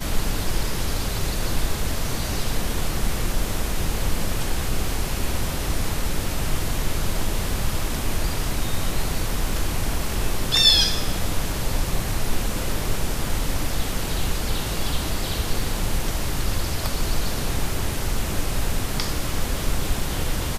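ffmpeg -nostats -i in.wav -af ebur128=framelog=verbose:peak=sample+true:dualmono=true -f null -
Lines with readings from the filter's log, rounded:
Integrated loudness:
  I:         -22.5 LUFS
  Threshold: -32.5 LUFS
Loudness range:
  LRA:         5.4 LU
  Threshold: -42.4 LUFS
  LRA low:   -24.0 LUFS
  LRA high:  -18.6 LUFS
Sample peak:
  Peak:       -3.1 dBFS
True peak:
  Peak:       -3.0 dBFS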